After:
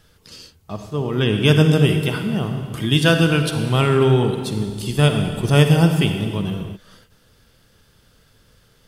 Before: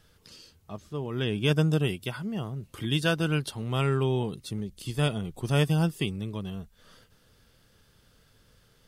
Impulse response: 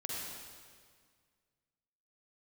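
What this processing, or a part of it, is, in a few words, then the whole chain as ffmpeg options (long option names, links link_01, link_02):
keyed gated reverb: -filter_complex "[0:a]asplit=3[link_01][link_02][link_03];[1:a]atrim=start_sample=2205[link_04];[link_02][link_04]afir=irnorm=-1:irlink=0[link_05];[link_03]apad=whole_len=391176[link_06];[link_05][link_06]sidechaingate=range=-33dB:threshold=-51dB:ratio=16:detection=peak,volume=-2.5dB[link_07];[link_01][link_07]amix=inputs=2:normalize=0,volume=6dB"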